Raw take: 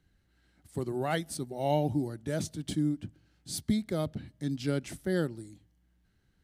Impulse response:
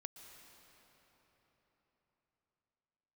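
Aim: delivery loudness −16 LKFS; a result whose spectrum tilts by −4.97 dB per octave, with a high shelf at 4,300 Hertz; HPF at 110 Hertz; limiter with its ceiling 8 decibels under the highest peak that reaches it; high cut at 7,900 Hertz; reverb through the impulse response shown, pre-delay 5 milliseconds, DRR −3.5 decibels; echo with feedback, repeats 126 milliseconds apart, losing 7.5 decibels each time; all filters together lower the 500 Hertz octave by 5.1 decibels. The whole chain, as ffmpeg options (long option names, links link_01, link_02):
-filter_complex "[0:a]highpass=110,lowpass=7900,equalizer=frequency=500:width_type=o:gain=-7,highshelf=frequency=4300:gain=5.5,alimiter=level_in=1.5dB:limit=-24dB:level=0:latency=1,volume=-1.5dB,aecho=1:1:126|252|378|504|630:0.422|0.177|0.0744|0.0312|0.0131,asplit=2[link_01][link_02];[1:a]atrim=start_sample=2205,adelay=5[link_03];[link_02][link_03]afir=irnorm=-1:irlink=0,volume=8.5dB[link_04];[link_01][link_04]amix=inputs=2:normalize=0,volume=16dB"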